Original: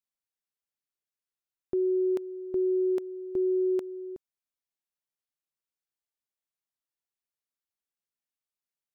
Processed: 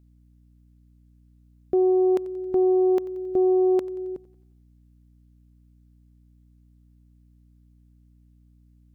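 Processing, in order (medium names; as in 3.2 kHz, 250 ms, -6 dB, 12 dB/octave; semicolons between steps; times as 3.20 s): self-modulated delay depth 0.12 ms; thinning echo 90 ms, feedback 56%, high-pass 330 Hz, level -18 dB; hum 60 Hz, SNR 29 dB; trim +7 dB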